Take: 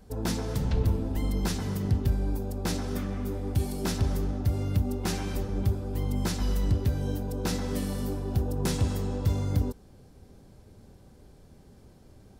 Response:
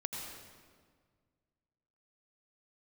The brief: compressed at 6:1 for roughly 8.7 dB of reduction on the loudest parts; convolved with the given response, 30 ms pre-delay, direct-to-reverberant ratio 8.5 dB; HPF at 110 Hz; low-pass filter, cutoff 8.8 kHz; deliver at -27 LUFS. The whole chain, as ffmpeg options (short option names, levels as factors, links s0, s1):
-filter_complex "[0:a]highpass=110,lowpass=8800,acompressor=threshold=0.0224:ratio=6,asplit=2[s0][s1];[1:a]atrim=start_sample=2205,adelay=30[s2];[s1][s2]afir=irnorm=-1:irlink=0,volume=0.335[s3];[s0][s3]amix=inputs=2:normalize=0,volume=3.16"